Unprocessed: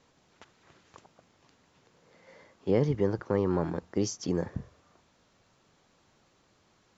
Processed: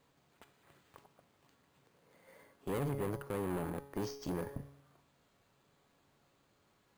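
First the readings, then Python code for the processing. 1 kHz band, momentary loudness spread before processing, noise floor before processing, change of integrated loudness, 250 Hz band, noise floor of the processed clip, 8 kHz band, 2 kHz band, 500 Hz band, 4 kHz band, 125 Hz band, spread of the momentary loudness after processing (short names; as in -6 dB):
-4.5 dB, 11 LU, -67 dBFS, -9.5 dB, -9.5 dB, -73 dBFS, n/a, -4.0 dB, -10.0 dB, -8.5 dB, -9.0 dB, 11 LU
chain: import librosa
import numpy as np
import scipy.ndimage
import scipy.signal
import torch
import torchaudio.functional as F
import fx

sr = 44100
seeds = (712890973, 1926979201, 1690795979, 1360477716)

y = fx.comb_fb(x, sr, f0_hz=140.0, decay_s=0.81, harmonics='all', damping=0.0, mix_pct=70)
y = fx.tube_stage(y, sr, drive_db=40.0, bias=0.7)
y = np.repeat(scipy.signal.resample_poly(y, 1, 4), 4)[:len(y)]
y = y * 10.0 ** (7.5 / 20.0)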